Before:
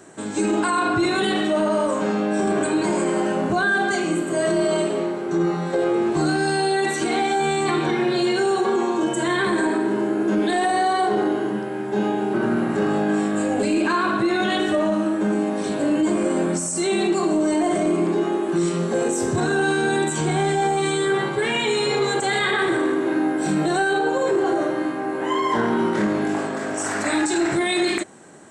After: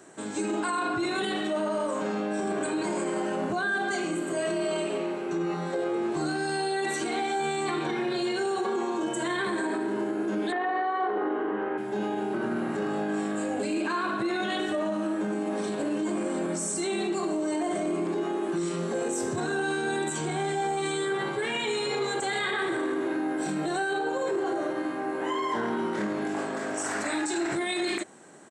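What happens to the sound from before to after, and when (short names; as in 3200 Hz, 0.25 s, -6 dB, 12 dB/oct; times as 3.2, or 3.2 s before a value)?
4.37–5.54 bell 2600 Hz +9 dB 0.28 oct
10.52–11.78 speaker cabinet 180–3000 Hz, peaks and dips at 180 Hz -9 dB, 270 Hz +7 dB, 460 Hz +8 dB, 860 Hz +5 dB, 1200 Hz +10 dB, 1800 Hz +5 dB
15.1–15.69 echo throw 0.35 s, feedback 75%, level -7 dB
whole clip: limiter -16 dBFS; HPF 180 Hz 6 dB/oct; gain -4.5 dB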